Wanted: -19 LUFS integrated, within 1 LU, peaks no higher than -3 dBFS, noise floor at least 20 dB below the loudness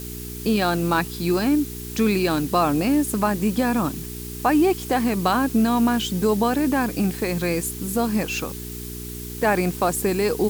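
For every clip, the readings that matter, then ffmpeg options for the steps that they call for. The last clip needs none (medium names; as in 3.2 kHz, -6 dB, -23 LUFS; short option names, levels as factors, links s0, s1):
hum 60 Hz; highest harmonic 420 Hz; hum level -33 dBFS; noise floor -34 dBFS; noise floor target -42 dBFS; loudness -22.0 LUFS; peak level -8.0 dBFS; loudness target -19.0 LUFS
-> -af "bandreject=f=60:t=h:w=4,bandreject=f=120:t=h:w=4,bandreject=f=180:t=h:w=4,bandreject=f=240:t=h:w=4,bandreject=f=300:t=h:w=4,bandreject=f=360:t=h:w=4,bandreject=f=420:t=h:w=4"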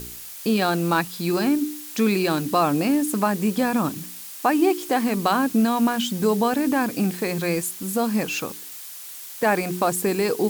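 hum not found; noise floor -38 dBFS; noise floor target -43 dBFS
-> -af "afftdn=nr=6:nf=-38"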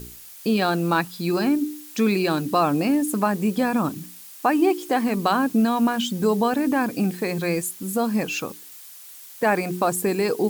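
noise floor -43 dBFS; loudness -22.5 LUFS; peak level -8.0 dBFS; loudness target -19.0 LUFS
-> -af "volume=1.5"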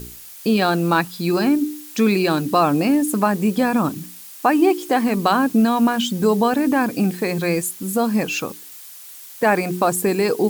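loudness -19.0 LUFS; peak level -4.5 dBFS; noise floor -40 dBFS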